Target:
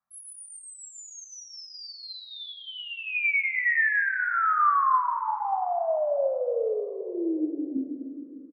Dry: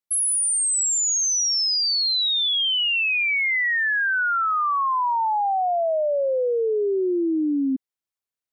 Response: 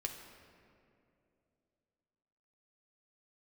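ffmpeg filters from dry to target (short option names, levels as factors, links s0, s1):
-filter_complex "[0:a]firequalizer=gain_entry='entry(100,0);entry(170,10);entry(250,7);entry(370,-18);entry(700,10);entry(1300,12);entry(2900,-21);entry(5800,-25)':delay=0.05:min_phase=1,alimiter=level_in=1.5:limit=0.0631:level=0:latency=1,volume=0.668,asettb=1/sr,asplit=3[s0][s1][s2];[s0]atrim=end=2.864[s3];[s1]atrim=start=2.86:end=5.07,asetpts=PTS-STARTPTS,afade=t=in:d=0.004:c=qsin,afade=t=out:st=2.206:d=0.004:c=qsin,equalizer=f=330:t=o:w=2.5:g=14[s4];[s2]atrim=start=5.066[s5];[s3][s4]acrossfade=d=0.004:c1=hsin:c2=qsin[s6];[s6][s5]acrossfade=d=0.004:c1=qsin:c2=hsin[s7];[1:a]atrim=start_sample=2205[s8];[s7][s8]afir=irnorm=-1:irlink=0,volume=1.58"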